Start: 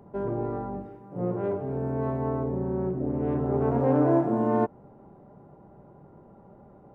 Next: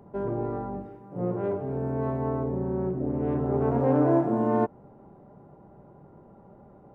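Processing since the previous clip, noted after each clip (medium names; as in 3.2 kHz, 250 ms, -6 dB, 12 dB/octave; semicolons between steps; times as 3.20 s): no audible change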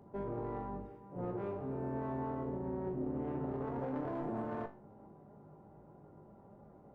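single-diode clipper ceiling -25 dBFS; peak limiter -23.5 dBFS, peak gain reduction 11 dB; feedback comb 52 Hz, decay 0.33 s, harmonics all, mix 80%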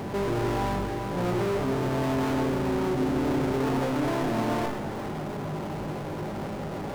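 power-law waveshaper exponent 0.35; on a send at -7 dB: reverberation RT60 3.5 s, pre-delay 12 ms; on the sum: trim +4.5 dB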